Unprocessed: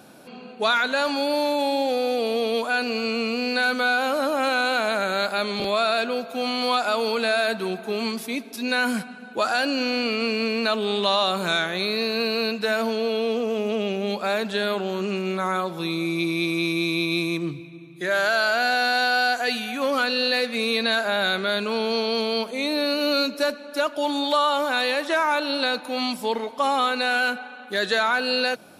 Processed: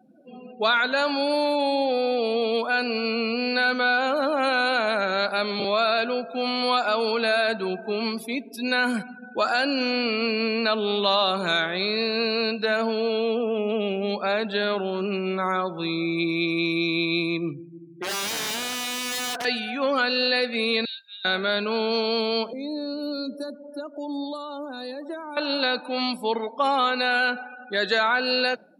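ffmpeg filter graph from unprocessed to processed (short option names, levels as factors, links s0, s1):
-filter_complex "[0:a]asettb=1/sr,asplit=3[s0][s1][s2];[s0]atrim=end=17.534[s3];[s1]atrim=start=17.53:end=19.45,asetpts=PTS-STARTPTS,afade=t=in:d=0.004:c=qsin,afade=t=out:st=1.916:d=0.004:c=qsin,lowpass=1600,equalizer=f=790:w=3.7:g=-2.5,aeval=exprs='(mod(13.3*val(0)+1,2)-1)/13.3':c=same[s4];[s2]atrim=start=19.446[s5];[s3][s4]acrossfade=d=0.004:c1=hsin:c2=qsin[s6];[s6][s5]acrossfade=d=0.004:c1=qsin:c2=hsin,asettb=1/sr,asplit=3[s7][s8][s9];[s7]atrim=end=20.854[s10];[s8]atrim=start=20.85:end=21.25,asetpts=PTS-STARTPTS,afade=t=in:d=0.004:c=qsin,afade=t=out:st=0.396:d=0.004:c=qsin,bandpass=f=3200:t=q:w=2.6,aderivative[s11];[s9]atrim=start=21.246[s12];[s10][s11]acrossfade=d=0.004:c1=hsin:c2=qsin[s13];[s13][s12]acrossfade=d=0.004:c1=qsin:c2=hsin,asettb=1/sr,asplit=3[s14][s15][s16];[s14]atrim=end=22.534[s17];[s15]atrim=start=22.53:end=25.37,asetpts=PTS-STARTPTS,afade=t=in:d=0.004:c=qsin,afade=t=out:st=2.836:d=0.004:c=qsin,acrossover=split=310|3000[s18][s19][s20];[s19]acompressor=threshold=0.0158:ratio=2.5:attack=3.2:release=140:knee=2.83:detection=peak[s21];[s18][s21][s20]amix=inputs=3:normalize=0,equalizer=f=2800:t=o:w=1.8:g=-14.5[s22];[s16]atrim=start=25.366[s23];[s17][s22]acrossfade=d=0.004:c1=hsin:c2=qsin[s24];[s24][s23]acrossfade=d=0.004:c1=qsin:c2=hsin,afftdn=nr=33:nf=-39,highpass=140"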